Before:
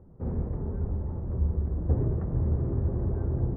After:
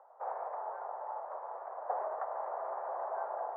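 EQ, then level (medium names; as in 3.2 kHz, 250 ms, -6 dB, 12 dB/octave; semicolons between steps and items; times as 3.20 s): steep high-pass 670 Hz 48 dB/octave; low-pass 1.1 kHz 12 dB/octave; distance through air 220 m; +17.0 dB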